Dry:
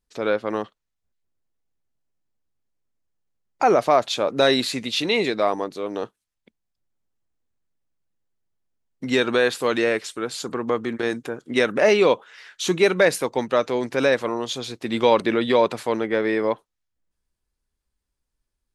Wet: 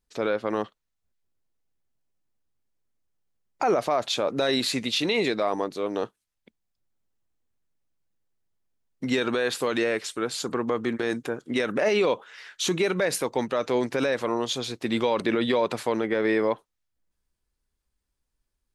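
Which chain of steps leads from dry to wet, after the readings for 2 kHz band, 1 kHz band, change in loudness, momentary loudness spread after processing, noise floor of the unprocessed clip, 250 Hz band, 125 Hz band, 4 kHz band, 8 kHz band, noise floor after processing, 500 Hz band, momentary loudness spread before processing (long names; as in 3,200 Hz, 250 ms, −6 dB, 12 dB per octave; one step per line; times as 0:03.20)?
−5.0 dB, −5.5 dB, −4.5 dB, 6 LU, −81 dBFS, −2.5 dB, −2.0 dB, −2.5 dB, −0.5 dB, −81 dBFS, −5.0 dB, 11 LU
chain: brickwall limiter −14 dBFS, peak gain reduction 9 dB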